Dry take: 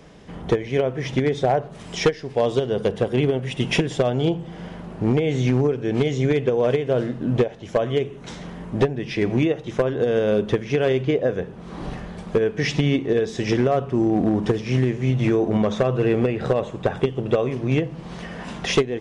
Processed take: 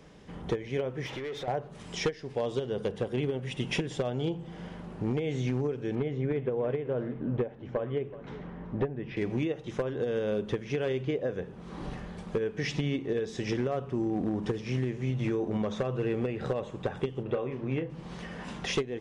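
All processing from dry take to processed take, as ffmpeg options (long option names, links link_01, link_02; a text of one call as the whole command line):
ffmpeg -i in.wav -filter_complex "[0:a]asettb=1/sr,asplit=3[link_01][link_02][link_03];[link_01]atrim=end=1.064[link_04];[link_02]atrim=start=1.06:end=1.48,asetpts=PTS-STARTPTS,afade=type=in:duration=0.004:curve=qsin,afade=type=out:start_time=0.416:duration=0.004:curve=qsin,equalizer=frequency=190:width_type=o:width=1.6:gain=-8,acompressor=threshold=-29dB:ratio=4:attack=3.2:release=140:knee=1:detection=peak,asplit=2[link_05][link_06];[link_06]highpass=frequency=720:poles=1,volume=18dB,asoftclip=type=tanh:threshold=-21dB[link_07];[link_05][link_07]amix=inputs=2:normalize=0,lowpass=frequency=2000:poles=1,volume=-6dB[link_08];[link_03]atrim=start=1.476[link_09];[link_04][link_08]acrossfade=duration=0.004:curve1=hsin:curve2=qsin[link_10];[link_10][link_09]acrossfade=duration=0.004:curve1=qsin:curve2=hsin,asettb=1/sr,asplit=3[link_11][link_12][link_13];[link_11]atrim=end=5.954[link_14];[link_12]atrim=start=5.95:end=9.17,asetpts=PTS-STARTPTS,afade=type=in:duration=0.004:curve=qsin,afade=type=out:start_time=3.216:duration=0.004:curve=qsin,lowpass=1900,aecho=1:1:376:0.126,atrim=end_sample=142002[link_15];[link_13]atrim=start=9.166[link_16];[link_14][link_15]acrossfade=duration=0.004:curve1=hsin:curve2=qsin[link_17];[link_17][link_16]acrossfade=duration=0.004:curve1=qsin:curve2=hsin,asettb=1/sr,asplit=3[link_18][link_19][link_20];[link_18]atrim=end=17.234[link_21];[link_19]atrim=start=17.23:end=17.9,asetpts=PTS-STARTPTS,afade=type=in:duration=0.004:curve=qsin,afade=type=out:start_time=0.666:duration=0.004:curve=qsin,bass=frequency=250:gain=-3,treble=frequency=4000:gain=-15,asplit=2[link_22][link_23];[link_23]adelay=30,volume=-10dB[link_24];[link_22][link_24]amix=inputs=2:normalize=0,atrim=end_sample=29547[link_25];[link_20]atrim=start=17.896[link_26];[link_21][link_25]acrossfade=duration=0.004:curve1=hsin:curve2=qsin[link_27];[link_27][link_26]acrossfade=duration=0.004:curve1=qsin:curve2=hsin,acompressor=threshold=-26dB:ratio=1.5,bandreject=frequency=670:width=12,volume=-6.5dB" out.wav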